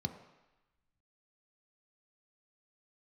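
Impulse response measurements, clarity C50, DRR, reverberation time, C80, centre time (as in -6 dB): 10.0 dB, 6.0 dB, 1.0 s, 11.5 dB, 14 ms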